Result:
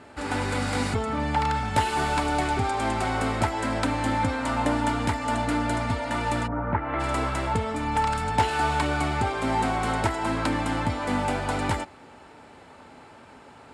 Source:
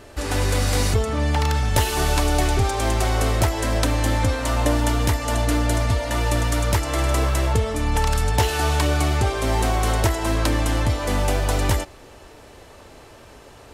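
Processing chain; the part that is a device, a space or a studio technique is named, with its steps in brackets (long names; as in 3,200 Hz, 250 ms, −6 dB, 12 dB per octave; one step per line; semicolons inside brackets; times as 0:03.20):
0:06.46–0:06.99: low-pass filter 1,100 Hz → 2,700 Hz 24 dB per octave
car door speaker (loudspeaker in its box 84–9,200 Hz, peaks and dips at 170 Hz +6 dB, 250 Hz +9 dB, 860 Hz +9 dB, 1,400 Hz +8 dB, 2,200 Hz +5 dB, 6,000 Hz −8 dB)
level −6.5 dB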